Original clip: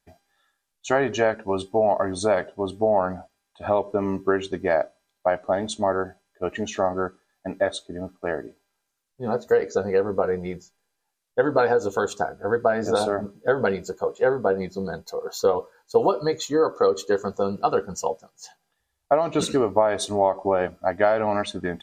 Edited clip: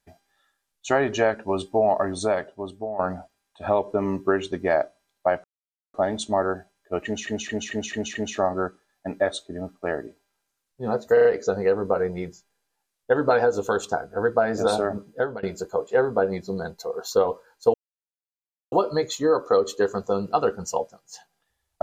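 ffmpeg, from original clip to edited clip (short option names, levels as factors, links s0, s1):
-filter_complex "[0:a]asplit=13[s0][s1][s2][s3][s4][s5][s6][s7][s8][s9][s10][s11][s12];[s0]atrim=end=2.99,asetpts=PTS-STARTPTS,afade=t=out:st=2.03:d=0.96:silence=0.211349[s13];[s1]atrim=start=2.99:end=5.44,asetpts=PTS-STARTPTS,afade=t=in:d=0.004:c=hsin:silence=0.211349,afade=t=out:st=2.446:d=0.004:c=hsin,apad=pad_dur=0.5[s14];[s2]atrim=start=5.44:end=6.772,asetpts=PTS-STARTPTS,afade=t=in:d=0.004:c=hsin[s15];[s3]atrim=start=6.548:end=6.772[s16];[s4]atrim=start=6.548:end=6.772[s17];[s5]atrim=start=6.548:end=6.772[s18];[s6]atrim=start=6.548:end=6.772[s19];[s7]atrim=start=6.548:end=9.572[s20];[s8]atrim=start=9.528:end=9.572[s21];[s9]atrim=start=9.528:end=9.572[s22];[s10]atrim=start=9.528:end=13.71,asetpts=PTS-STARTPTS,afade=t=out:st=3.852:d=0.33:silence=0.0668344[s23];[s11]atrim=start=13.71:end=16.02,asetpts=PTS-STARTPTS,afade=t=in:d=0.004:c=hsin:silence=0.0668344,afade=t=out:st=2.306:d=0.004:c=hsin,apad=pad_dur=0.98[s24];[s12]atrim=start=16.02,asetpts=PTS-STARTPTS,afade=t=in:d=0.004:c=hsin[s25];[s13][s14][s15]concat=n=3:v=0:a=1[s26];[s26][s16]acrossfade=d=0.004:c1=hsin:c2=hsin[s27];[s27][s17]acrossfade=d=0.004:c1=hsin:c2=hsin[s28];[s28][s18]acrossfade=d=0.004:c1=hsin:c2=hsin[s29];[s29][s19]acrossfade=d=0.004:c1=hsin:c2=hsin[s30];[s30][s20]acrossfade=d=0.004:c1=hsin:c2=hsin[s31];[s31][s21]acrossfade=d=0.004:c1=hsin:c2=hsin[s32];[s32][s22]acrossfade=d=0.004:c1=hsin:c2=hsin[s33];[s23][s24][s25]concat=n=3:v=0:a=1[s34];[s33][s34]acrossfade=d=0.004:c1=hsin:c2=hsin"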